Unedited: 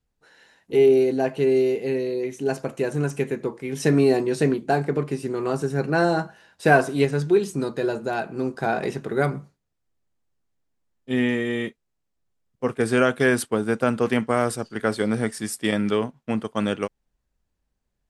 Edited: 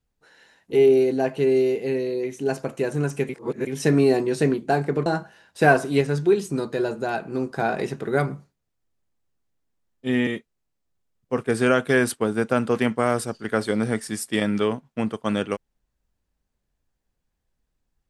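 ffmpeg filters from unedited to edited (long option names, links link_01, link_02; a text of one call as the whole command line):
ffmpeg -i in.wav -filter_complex "[0:a]asplit=5[link_01][link_02][link_03][link_04][link_05];[link_01]atrim=end=3.292[link_06];[link_02]atrim=start=3.288:end=3.672,asetpts=PTS-STARTPTS,areverse[link_07];[link_03]atrim=start=3.668:end=5.062[link_08];[link_04]atrim=start=6.098:end=11.312[link_09];[link_05]atrim=start=11.578[link_10];[link_06][link_07]acrossfade=duration=0.004:curve1=hsin:curve2=hsin[link_11];[link_11][link_08]acrossfade=duration=0.004:curve1=hsin:curve2=hsin[link_12];[link_12][link_09]acrossfade=duration=0.004:curve1=hsin:curve2=hsin[link_13];[link_13][link_10]acrossfade=duration=0.004:curve1=hsin:curve2=hsin" out.wav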